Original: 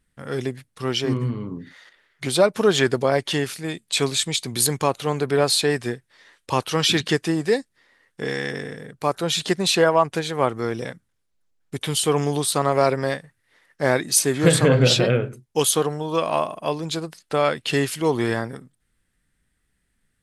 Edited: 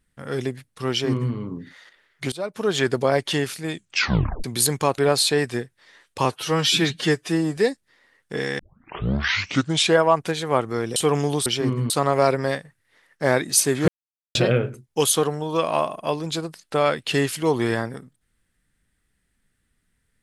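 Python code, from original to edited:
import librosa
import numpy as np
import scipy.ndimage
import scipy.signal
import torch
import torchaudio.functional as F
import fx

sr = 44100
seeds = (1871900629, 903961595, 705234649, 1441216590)

y = fx.edit(x, sr, fx.duplicate(start_s=0.9, length_s=0.44, to_s=12.49),
    fx.fade_in_from(start_s=2.32, length_s=0.69, floor_db=-20.0),
    fx.tape_stop(start_s=3.74, length_s=0.7),
    fx.cut(start_s=4.98, length_s=0.32),
    fx.stretch_span(start_s=6.57, length_s=0.88, factor=1.5),
    fx.tape_start(start_s=8.47, length_s=1.35),
    fx.cut(start_s=10.84, length_s=1.15),
    fx.silence(start_s=14.47, length_s=0.47), tone=tone)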